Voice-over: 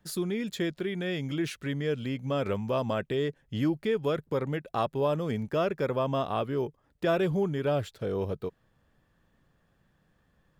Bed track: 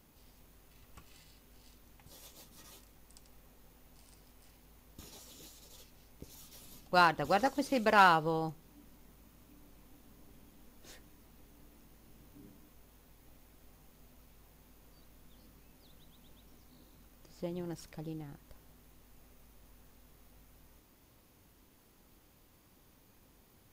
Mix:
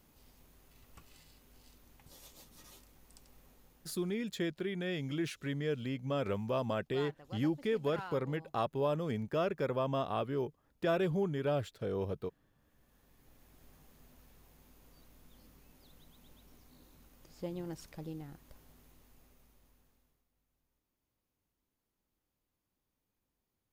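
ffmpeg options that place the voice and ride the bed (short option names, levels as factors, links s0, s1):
-filter_complex "[0:a]adelay=3800,volume=0.562[s0];[1:a]volume=8.91,afade=t=out:st=3.51:d=0.84:silence=0.1,afade=t=in:st=12.56:d=1.07:silence=0.0944061,afade=t=out:st=18.81:d=1.44:silence=0.0891251[s1];[s0][s1]amix=inputs=2:normalize=0"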